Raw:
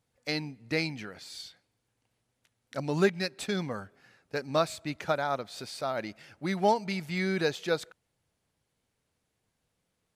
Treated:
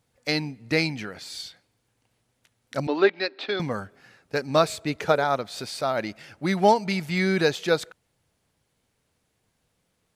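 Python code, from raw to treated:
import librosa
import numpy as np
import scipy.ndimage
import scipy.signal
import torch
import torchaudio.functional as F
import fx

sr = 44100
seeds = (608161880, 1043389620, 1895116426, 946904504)

y = fx.ellip_bandpass(x, sr, low_hz=290.0, high_hz=4100.0, order=3, stop_db=40, at=(2.87, 3.6))
y = fx.peak_eq(y, sr, hz=440.0, db=12.0, octaves=0.23, at=(4.63, 5.24))
y = y * librosa.db_to_amplitude(6.5)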